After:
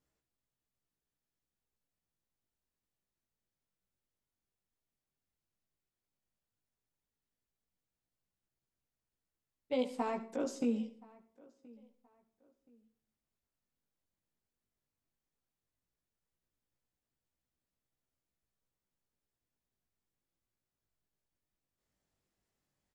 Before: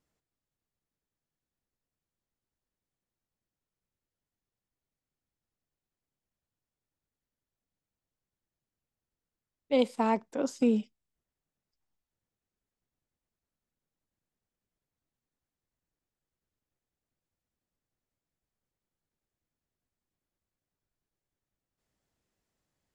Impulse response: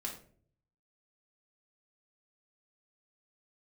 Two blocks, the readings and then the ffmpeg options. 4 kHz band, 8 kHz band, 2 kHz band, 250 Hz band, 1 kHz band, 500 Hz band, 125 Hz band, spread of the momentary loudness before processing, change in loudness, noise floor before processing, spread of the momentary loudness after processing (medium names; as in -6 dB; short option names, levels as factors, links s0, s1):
-8.0 dB, -4.5 dB, -7.0 dB, -7.0 dB, -8.0 dB, -7.0 dB, no reading, 5 LU, -7.5 dB, under -85 dBFS, 5 LU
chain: -filter_complex "[0:a]acompressor=threshold=0.0447:ratio=6,flanger=delay=15.5:depth=5.7:speed=0.11,asplit=2[s0][s1];[s1]adelay=1025,lowpass=f=2500:p=1,volume=0.0631,asplit=2[s2][s3];[s3]adelay=1025,lowpass=f=2500:p=1,volume=0.31[s4];[s0][s2][s4]amix=inputs=3:normalize=0,asplit=2[s5][s6];[1:a]atrim=start_sample=2205,adelay=70[s7];[s6][s7]afir=irnorm=-1:irlink=0,volume=0.224[s8];[s5][s8]amix=inputs=2:normalize=0"